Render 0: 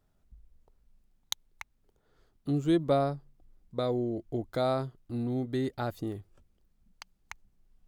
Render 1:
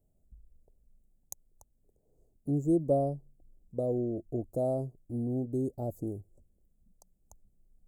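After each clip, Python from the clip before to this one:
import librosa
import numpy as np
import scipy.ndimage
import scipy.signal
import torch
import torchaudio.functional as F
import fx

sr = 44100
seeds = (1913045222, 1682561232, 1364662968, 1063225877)

y = scipy.signal.sosfilt(scipy.signal.cheby1(3, 1.0, [630.0, 7500.0], 'bandstop', fs=sr, output='sos'), x)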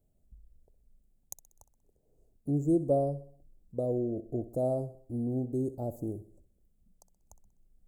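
y = fx.echo_feedback(x, sr, ms=63, feedback_pct=50, wet_db=-15.5)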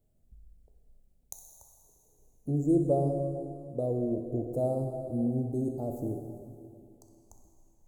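y = fx.rev_plate(x, sr, seeds[0], rt60_s=2.5, hf_ratio=0.95, predelay_ms=0, drr_db=3.0)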